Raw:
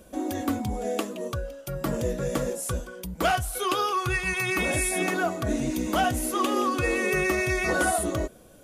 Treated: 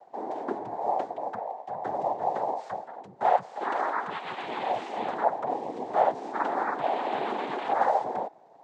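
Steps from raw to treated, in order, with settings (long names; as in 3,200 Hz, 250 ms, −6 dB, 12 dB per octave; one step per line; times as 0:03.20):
variable-slope delta modulation 64 kbit/s
cochlear-implant simulation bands 6
resonant band-pass 750 Hz, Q 3
level +6 dB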